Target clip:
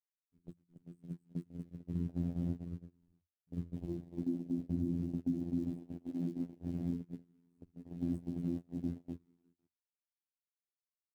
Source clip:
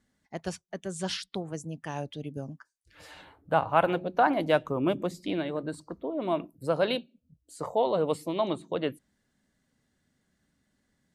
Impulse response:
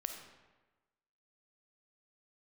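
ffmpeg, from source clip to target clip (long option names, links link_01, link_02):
-af "aecho=1:1:240|444|617.4|764.8|890.1:0.631|0.398|0.251|0.158|0.1,afftfilt=real='re*gte(hypot(re,im),0.0112)':imag='im*gte(hypot(re,im),0.0112)':win_size=1024:overlap=0.75,aeval=exprs='val(0)*sin(2*PI*35*n/s)':channel_layout=same,afftfilt=real='re*(1-between(b*sr/4096,330,7900))':imag='im*(1-between(b*sr/4096,330,7900))':win_size=4096:overlap=0.75,equalizer=frequency=10000:width_type=o:width=0.36:gain=-6.5,acrusher=bits=7:mix=0:aa=0.000001,bandreject=frequency=50:width_type=h:width=6,bandreject=frequency=100:width_type=h:width=6,bandreject=frequency=150:width_type=h:width=6,bandreject=frequency=200:width_type=h:width=6,bandreject=frequency=250:width_type=h:width=6,bandreject=frequency=300:width_type=h:width=6,bandreject=frequency=350:width_type=h:width=6,bandreject=frequency=400:width_type=h:width=6,alimiter=level_in=6dB:limit=-24dB:level=0:latency=1:release=266,volume=-6dB,afftfilt=real='hypot(re,im)*cos(PI*b)':imag='0':win_size=2048:overlap=0.75,afwtdn=0.00355,lowshelf=frequency=160:gain=6.5,agate=range=-27dB:threshold=-42dB:ratio=16:detection=peak,volume=6dB"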